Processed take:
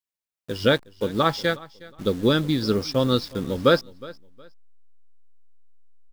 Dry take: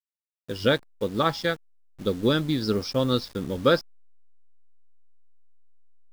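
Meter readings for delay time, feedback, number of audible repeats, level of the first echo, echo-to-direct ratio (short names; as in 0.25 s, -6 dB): 0.364 s, 27%, 2, -21.0 dB, -20.5 dB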